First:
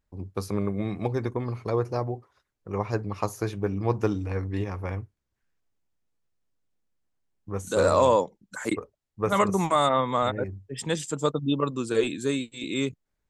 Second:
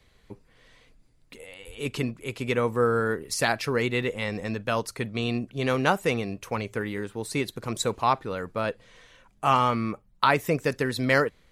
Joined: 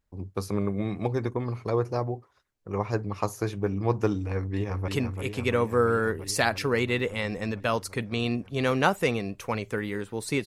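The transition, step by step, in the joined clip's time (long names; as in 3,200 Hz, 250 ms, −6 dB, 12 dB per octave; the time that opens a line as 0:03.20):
first
0:04.36–0:04.88: delay throw 340 ms, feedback 80%, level −6 dB
0:04.88: continue with second from 0:01.91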